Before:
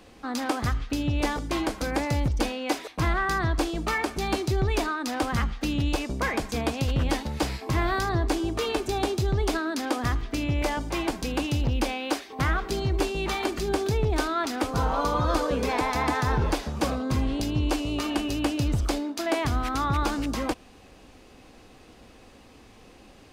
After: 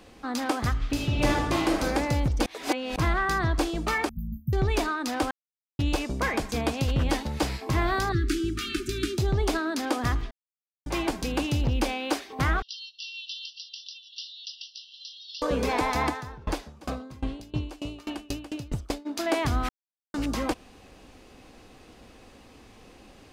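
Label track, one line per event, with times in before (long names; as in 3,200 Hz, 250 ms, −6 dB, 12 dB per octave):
0.780000	1.840000	thrown reverb, RT60 1.2 s, DRR −0.5 dB
2.460000	2.960000	reverse
4.090000	4.530000	linear-phase brick-wall band-stop 250–13,000 Hz
5.310000	5.790000	silence
8.120000	9.180000	linear-phase brick-wall band-stop 400–1,200 Hz
10.310000	10.860000	silence
12.620000	15.420000	linear-phase brick-wall band-pass 2,700–5,900 Hz
16.080000	19.050000	tremolo with a ramp in dB decaying 2 Hz → 5.9 Hz, depth 26 dB
19.690000	20.140000	silence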